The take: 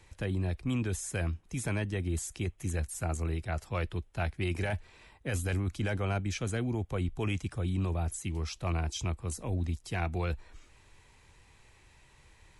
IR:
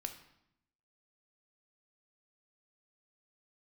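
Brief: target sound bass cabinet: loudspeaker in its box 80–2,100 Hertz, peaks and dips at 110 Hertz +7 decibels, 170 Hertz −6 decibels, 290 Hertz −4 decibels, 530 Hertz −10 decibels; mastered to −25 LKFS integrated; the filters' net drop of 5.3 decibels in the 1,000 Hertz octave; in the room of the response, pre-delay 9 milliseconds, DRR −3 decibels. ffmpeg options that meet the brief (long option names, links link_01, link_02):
-filter_complex "[0:a]equalizer=frequency=1000:width_type=o:gain=-6.5,asplit=2[link_01][link_02];[1:a]atrim=start_sample=2205,adelay=9[link_03];[link_02][link_03]afir=irnorm=-1:irlink=0,volume=5dB[link_04];[link_01][link_04]amix=inputs=2:normalize=0,highpass=frequency=80:width=0.5412,highpass=frequency=80:width=1.3066,equalizer=frequency=110:width_type=q:width=4:gain=7,equalizer=frequency=170:width_type=q:width=4:gain=-6,equalizer=frequency=290:width_type=q:width=4:gain=-4,equalizer=frequency=530:width_type=q:width=4:gain=-10,lowpass=frequency=2100:width=0.5412,lowpass=frequency=2100:width=1.3066,volume=2dB"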